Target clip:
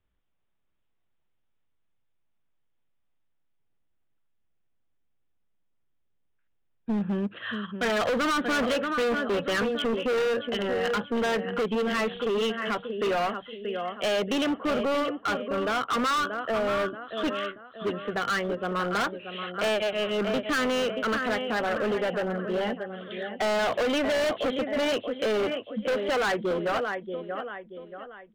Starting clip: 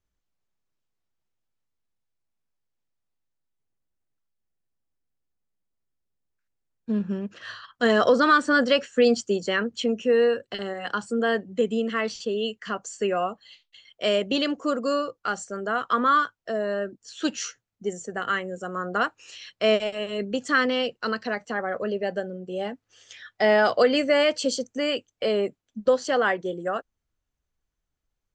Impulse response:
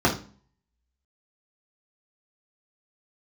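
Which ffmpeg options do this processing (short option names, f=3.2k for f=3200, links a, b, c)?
-filter_complex "[0:a]acrossover=split=440|2100[a][b][c];[a]acompressor=threshold=-26dB:ratio=4[d];[b]acompressor=threshold=-21dB:ratio=4[e];[c]acompressor=threshold=-33dB:ratio=4[f];[d][e][f]amix=inputs=3:normalize=0,aresample=8000,aresample=44100,asplit=2[g][h];[h]aecho=0:1:631|1262|1893|2524:0.299|0.122|0.0502|0.0206[i];[g][i]amix=inputs=2:normalize=0,volume=27.5dB,asoftclip=hard,volume=-27.5dB,volume=4dB"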